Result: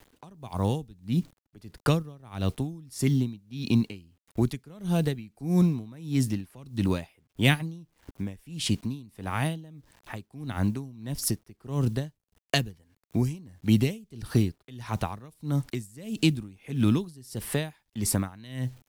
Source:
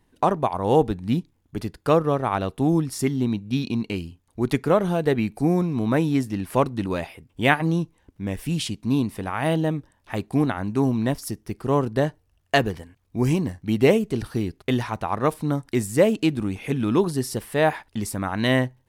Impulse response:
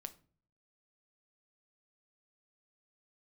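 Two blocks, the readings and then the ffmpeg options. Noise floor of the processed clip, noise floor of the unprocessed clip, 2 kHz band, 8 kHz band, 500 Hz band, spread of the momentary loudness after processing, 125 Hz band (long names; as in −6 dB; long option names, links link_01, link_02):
−78 dBFS, −66 dBFS, −7.5 dB, +1.0 dB, −13.0 dB, 13 LU, −2.0 dB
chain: -filter_complex "[0:a]acrusher=bits=9:mix=0:aa=0.000001,acrossover=split=210|3000[link_01][link_02][link_03];[link_02]acompressor=threshold=-33dB:ratio=10[link_04];[link_01][link_04][link_03]amix=inputs=3:normalize=0,aeval=exprs='val(0)*pow(10,-26*(0.5-0.5*cos(2*PI*1.6*n/s))/20)':channel_layout=same,volume=6.5dB"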